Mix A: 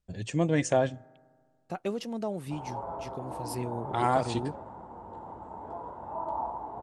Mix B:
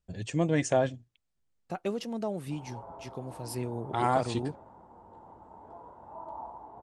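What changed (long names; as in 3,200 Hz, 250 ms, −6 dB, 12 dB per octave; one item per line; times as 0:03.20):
background −8.0 dB
reverb: off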